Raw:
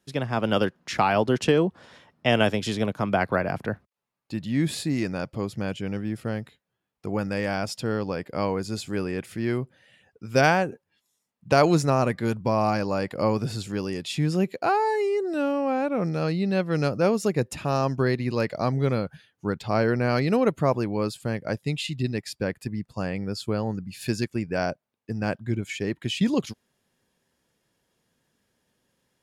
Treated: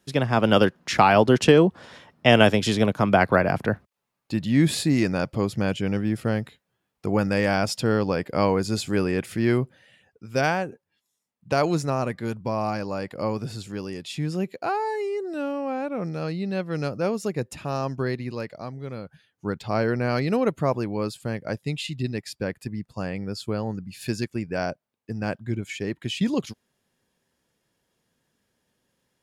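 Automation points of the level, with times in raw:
0:09.62 +5 dB
0:10.27 −3.5 dB
0:18.18 −3.5 dB
0:18.80 −12.5 dB
0:19.48 −1 dB

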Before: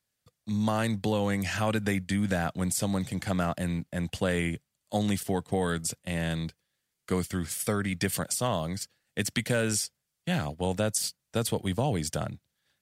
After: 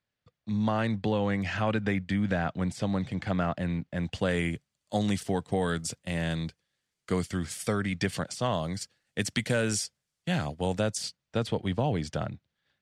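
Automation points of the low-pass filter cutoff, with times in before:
0:03.82 3,400 Hz
0:04.42 7,700 Hz
0:07.65 7,700 Hz
0:08.37 4,500 Hz
0:08.66 8,500 Hz
0:10.68 8,500 Hz
0:11.39 3,800 Hz

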